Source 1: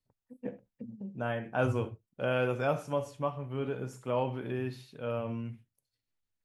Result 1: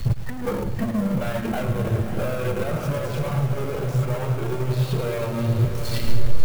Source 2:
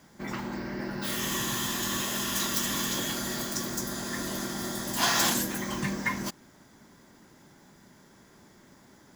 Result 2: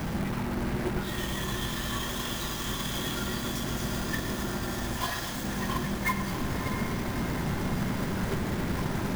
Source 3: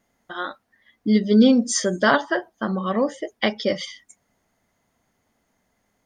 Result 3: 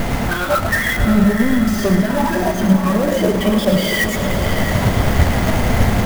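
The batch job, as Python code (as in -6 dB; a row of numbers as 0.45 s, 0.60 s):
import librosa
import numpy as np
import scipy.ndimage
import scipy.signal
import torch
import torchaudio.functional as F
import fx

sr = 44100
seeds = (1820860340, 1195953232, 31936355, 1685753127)

p1 = np.sign(x) * np.sqrt(np.mean(np.square(x)))
p2 = fx.peak_eq(p1, sr, hz=280.0, db=-2.5, octaves=0.77)
p3 = fx.noise_reduce_blind(p2, sr, reduce_db=8)
p4 = fx.lowpass(p3, sr, hz=2200.0, slope=6)
p5 = fx.echo_feedback(p4, sr, ms=108, feedback_pct=56, wet_db=-9.5)
p6 = fx.transient(p5, sr, attack_db=11, sustain_db=-6)
p7 = fx.low_shelf(p6, sr, hz=170.0, db=11.5)
p8 = fx.rider(p7, sr, range_db=10, speed_s=2.0)
p9 = p8 + fx.echo_diffused(p8, sr, ms=640, feedback_pct=62, wet_db=-7.5, dry=0)
p10 = fx.clock_jitter(p9, sr, seeds[0], jitter_ms=0.024)
y = F.gain(torch.from_numpy(p10), 7.0).numpy()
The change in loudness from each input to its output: +9.0 LU, -2.0 LU, +5.0 LU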